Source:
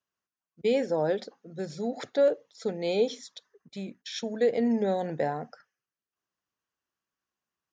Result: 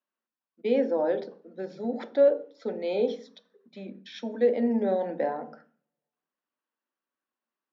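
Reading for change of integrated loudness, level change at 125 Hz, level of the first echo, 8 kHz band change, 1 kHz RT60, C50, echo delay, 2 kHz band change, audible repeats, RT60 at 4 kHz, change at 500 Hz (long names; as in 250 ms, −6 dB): +1.5 dB, can't be measured, no echo audible, can't be measured, 0.45 s, 15.5 dB, no echo audible, −2.5 dB, no echo audible, 0.40 s, +1.5 dB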